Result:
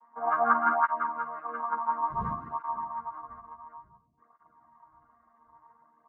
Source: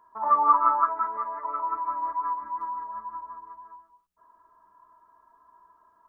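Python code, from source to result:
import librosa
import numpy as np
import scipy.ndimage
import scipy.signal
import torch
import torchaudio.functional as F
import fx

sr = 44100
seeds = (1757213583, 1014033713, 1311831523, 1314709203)

y = fx.chord_vocoder(x, sr, chord='bare fifth', root=51)
y = fx.dmg_wind(y, sr, seeds[0], corner_hz=150.0, level_db=-39.0, at=(2.1, 2.76), fade=0.02)
y = fx.echo_bbd(y, sr, ms=545, stages=2048, feedback_pct=61, wet_db=-19)
y = fx.flanger_cancel(y, sr, hz=0.57, depth_ms=7.1)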